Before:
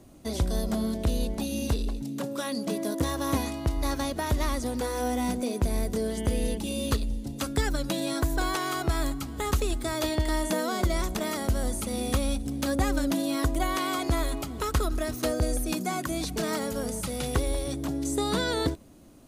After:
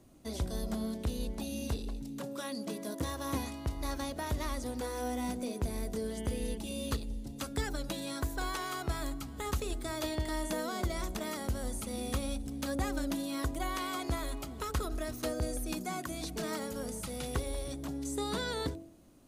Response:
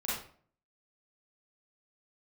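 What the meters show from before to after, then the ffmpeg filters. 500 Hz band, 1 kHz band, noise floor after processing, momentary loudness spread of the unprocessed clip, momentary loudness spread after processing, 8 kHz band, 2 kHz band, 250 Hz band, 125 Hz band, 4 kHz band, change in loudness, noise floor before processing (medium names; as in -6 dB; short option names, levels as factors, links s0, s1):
-7.5 dB, -7.0 dB, -44 dBFS, 4 LU, 4 LU, -7.0 dB, -7.0 dB, -8.0 dB, -8.0 dB, -7.0 dB, -7.5 dB, -38 dBFS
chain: -af "bandreject=f=47.11:t=h:w=4,bandreject=f=94.22:t=h:w=4,bandreject=f=141.33:t=h:w=4,bandreject=f=188.44:t=h:w=4,bandreject=f=235.55:t=h:w=4,bandreject=f=282.66:t=h:w=4,bandreject=f=329.77:t=h:w=4,bandreject=f=376.88:t=h:w=4,bandreject=f=423.99:t=h:w=4,bandreject=f=471.1:t=h:w=4,bandreject=f=518.21:t=h:w=4,bandreject=f=565.32:t=h:w=4,bandreject=f=612.43:t=h:w=4,bandreject=f=659.54:t=h:w=4,bandreject=f=706.65:t=h:w=4,bandreject=f=753.76:t=h:w=4,bandreject=f=800.87:t=h:w=4,bandreject=f=847.98:t=h:w=4,volume=0.447"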